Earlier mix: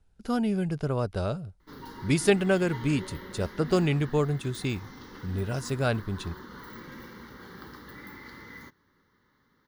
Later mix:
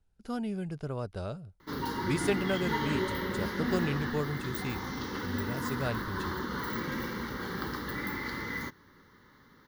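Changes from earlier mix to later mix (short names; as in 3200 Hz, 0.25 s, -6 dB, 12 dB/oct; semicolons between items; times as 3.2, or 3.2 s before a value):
speech -7.5 dB; background +9.5 dB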